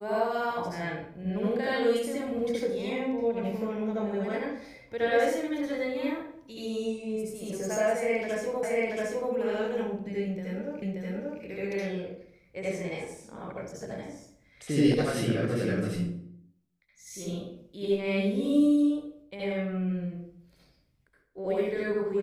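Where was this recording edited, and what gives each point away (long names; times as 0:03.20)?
0:08.63: the same again, the last 0.68 s
0:10.82: the same again, the last 0.58 s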